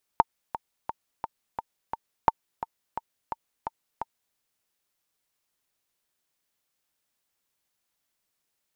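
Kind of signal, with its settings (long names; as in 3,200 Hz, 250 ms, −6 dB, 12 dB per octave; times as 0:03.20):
click track 173 BPM, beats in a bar 6, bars 2, 907 Hz, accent 13.5 dB −4 dBFS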